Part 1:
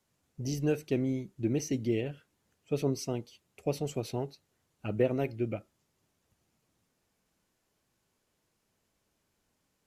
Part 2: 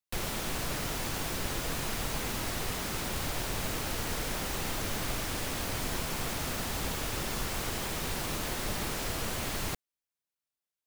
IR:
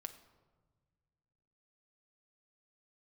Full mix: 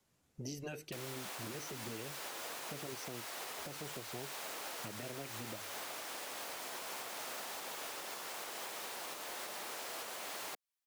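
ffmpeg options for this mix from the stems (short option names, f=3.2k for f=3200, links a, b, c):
-filter_complex "[0:a]bandreject=f=50:t=h:w=6,bandreject=f=100:t=h:w=6,volume=0.5dB[a];[1:a]highpass=720,adelay=800,volume=0.5dB[b];[a][b]amix=inputs=2:normalize=0,afftfilt=real='re*lt(hypot(re,im),0.282)':imag='im*lt(hypot(re,im),0.282)':win_size=1024:overlap=0.75,acrossover=split=280|810[c][d][e];[c]acompressor=threshold=-48dB:ratio=4[f];[d]acompressor=threshold=-43dB:ratio=4[g];[e]acompressor=threshold=-42dB:ratio=4[h];[f][g][h]amix=inputs=3:normalize=0,alimiter=level_in=9.5dB:limit=-24dB:level=0:latency=1:release=212,volume=-9.5dB"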